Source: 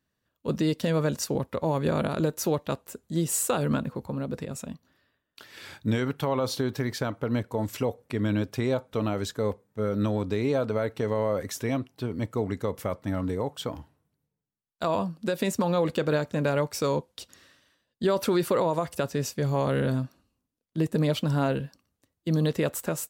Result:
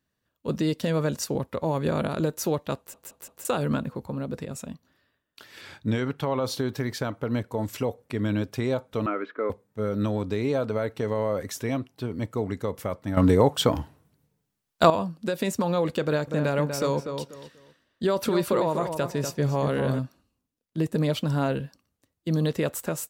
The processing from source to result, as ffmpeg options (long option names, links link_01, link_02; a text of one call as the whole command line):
ffmpeg -i in.wav -filter_complex "[0:a]asettb=1/sr,asplit=3[link_01][link_02][link_03];[link_01]atrim=end=5.614[link_04];[link_02]atrim=start=5.61:end=6.45,asetpts=PTS-STARTPTS,afade=type=in:duration=0.004:curve=qsin,afade=type=out:start_time=0.836:duration=0.004:curve=qsin,highshelf=frequency=9500:gain=-10.5[link_05];[link_03]atrim=start=6.446[link_06];[link_04][link_05]acrossfade=duration=0.004:curve1=hsin:curve2=qsin[link_07];[link_07][link_06]acrossfade=duration=0.004:curve1=qsin:curve2=hsin,asettb=1/sr,asplit=3[link_08][link_09][link_10];[link_08]atrim=end=9.064[link_11];[link_09]atrim=start=9.06:end=9.5,asetpts=PTS-STARTPTS,afade=type=in:duration=0.004:curve=qsin,afade=type=out:start_time=0.436:duration=0.004:curve=qsin,highpass=frequency=280:width=0.5412,highpass=frequency=280:width=1.3066,equalizer=frequency=310:width_type=q:width=4:gain=4,equalizer=frequency=810:width_type=q:width=4:gain=-7,equalizer=frequency=1300:width_type=q:width=4:gain=10,equalizer=frequency=2200:width_type=q:width=4:gain=6,lowpass=frequency=2300:width=0.5412,lowpass=frequency=2300:width=1.3066[link_12];[link_10]atrim=start=9.496[link_13];[link_11][link_12]acrossfade=duration=0.004:curve1=hsin:curve2=qsin[link_14];[link_14][link_13]acrossfade=duration=0.004:curve1=qsin:curve2=hsin,asettb=1/sr,asplit=3[link_15][link_16][link_17];[link_15]atrim=end=16.034[link_18];[link_16]atrim=start=16.03:end=19.99,asetpts=PTS-STARTPTS,afade=type=in:duration=0.004:curve=qsin,afade=type=out:start_time=3.956:duration=0.004:curve=qsin,asplit=2[link_19][link_20];[link_20]adelay=243,lowpass=frequency=2200:poles=1,volume=-6.5dB,asplit=2[link_21][link_22];[link_22]adelay=243,lowpass=frequency=2200:poles=1,volume=0.27,asplit=2[link_23][link_24];[link_24]adelay=243,lowpass=frequency=2200:poles=1,volume=0.27[link_25];[link_19][link_21][link_23][link_25]amix=inputs=4:normalize=0,atrim=end_sample=174636[link_26];[link_17]atrim=start=19.986[link_27];[link_18][link_26]acrossfade=duration=0.004:curve1=hsin:curve2=qsin[link_28];[link_28][link_27]acrossfade=duration=0.004:curve1=qsin:curve2=hsin,asplit=7[link_29][link_30][link_31][link_32][link_33][link_34][link_35];[link_29]atrim=end=2.942[link_36];[link_30]atrim=start=2.768:end=2.942[link_37];[link_31]atrim=start=2.768:end=2.942[link_38];[link_32]atrim=start=2.768:end=2.942[link_39];[link_33]atrim=start=3.448:end=13.172[link_40];[link_34]atrim=start=13.168:end=14.902,asetpts=PTS-STARTPTS,volume=11dB[link_41];[link_35]atrim=start=14.898[link_42];[link_36][link_37]acrossfade=duration=0.004:curve1=hsin:curve2=hsin[link_43];[link_43][link_38]acrossfade=duration=0.004:curve1=hsin:curve2=hsin[link_44];[link_44][link_39]acrossfade=duration=0.004:curve1=hsin:curve2=hsin[link_45];[link_45][link_40]acrossfade=duration=0.004:curve1=hsin:curve2=hsin[link_46];[link_46][link_41]acrossfade=duration=0.004:curve1=hsin:curve2=hsin[link_47];[link_47][link_42]acrossfade=duration=0.004:curve1=hsin:curve2=hsin" out.wav